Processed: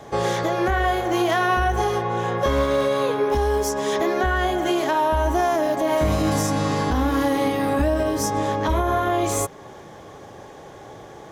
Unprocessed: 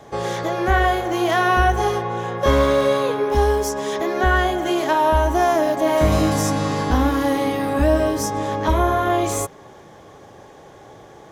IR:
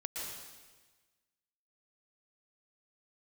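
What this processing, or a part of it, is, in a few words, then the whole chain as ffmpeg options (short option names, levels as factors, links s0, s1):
stacked limiters: -af "alimiter=limit=0.299:level=0:latency=1:release=71,alimiter=limit=0.188:level=0:latency=1:release=475,volume=1.33"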